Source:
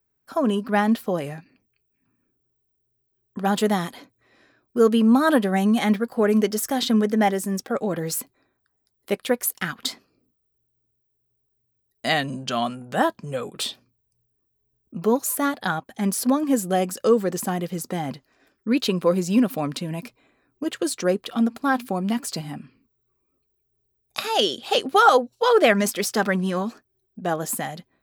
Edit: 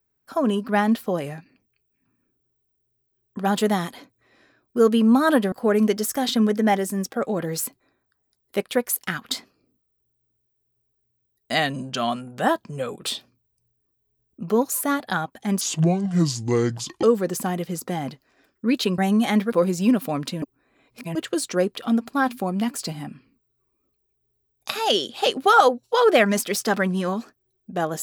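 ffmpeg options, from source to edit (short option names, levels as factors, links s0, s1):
-filter_complex "[0:a]asplit=8[s0][s1][s2][s3][s4][s5][s6][s7];[s0]atrim=end=5.522[s8];[s1]atrim=start=6.058:end=16.154[s9];[s2]atrim=start=16.15:end=17.06,asetpts=PTS-STARTPTS,asetrate=28224,aresample=44100[s10];[s3]atrim=start=17.056:end=19.012[s11];[s4]atrim=start=5.518:end=6.062[s12];[s5]atrim=start=19.008:end=19.912[s13];[s6]atrim=start=19.908:end=20.642,asetpts=PTS-STARTPTS,areverse[s14];[s7]atrim=start=20.638[s15];[s8][s9]acrossfade=d=0.004:c1=hsin:c2=hsin[s16];[s16][s10]acrossfade=d=0.004:c1=hsin:c2=hsin[s17];[s17][s11]acrossfade=d=0.004:c1=hsin:c2=hsin[s18];[s18][s12]acrossfade=d=0.004:c1=hsin:c2=hsin[s19];[s19][s13]acrossfade=d=0.004:c1=hsin:c2=hsin[s20];[s20][s14]acrossfade=d=0.004:c1=hsin:c2=hsin[s21];[s21][s15]acrossfade=d=0.004:c1=hsin:c2=hsin"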